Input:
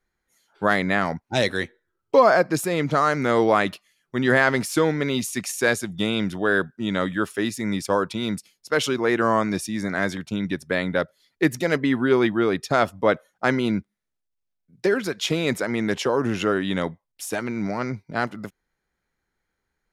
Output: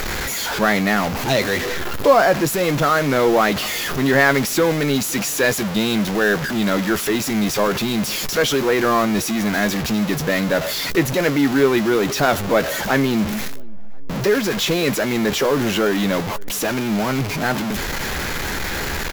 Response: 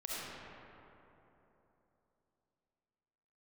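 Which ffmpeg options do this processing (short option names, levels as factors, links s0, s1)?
-filter_complex "[0:a]aeval=exprs='val(0)+0.5*0.106*sgn(val(0))':c=same,acrusher=bits=5:mix=0:aa=0.000001,equalizer=f=8600:t=o:w=0.23:g=-10.5,asplit=2[s0][s1];[s1]adelay=15,volume=0.251[s2];[s0][s2]amix=inputs=2:normalize=0,asplit=2[s3][s4];[s4]adelay=539,lowpass=f=1100:p=1,volume=0.0631,asplit=2[s5][s6];[s6]adelay=539,lowpass=f=1100:p=1,volume=0.48,asplit=2[s7][s8];[s8]adelay=539,lowpass=f=1100:p=1,volume=0.48[s9];[s5][s7][s9]amix=inputs=3:normalize=0[s10];[s3][s10]amix=inputs=2:normalize=0,asetrate=45938,aresample=44100"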